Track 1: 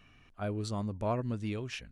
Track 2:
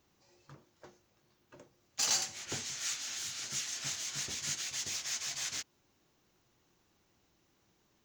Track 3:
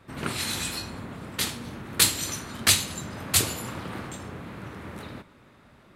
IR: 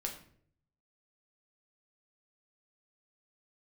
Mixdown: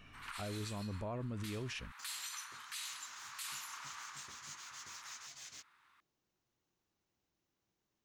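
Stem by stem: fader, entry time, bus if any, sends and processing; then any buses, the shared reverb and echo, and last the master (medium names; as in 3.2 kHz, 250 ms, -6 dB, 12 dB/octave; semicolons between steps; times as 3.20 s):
+2.0 dB, 0.00 s, no send, none
2.61 s -23.5 dB -> 2.91 s -14 dB, 0.00 s, no send, none
-7.5 dB, 0.05 s, no send, steep high-pass 960 Hz 48 dB/octave; tilt EQ -1.5 dB/octave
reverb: none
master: peak limiter -34 dBFS, peak gain reduction 18.5 dB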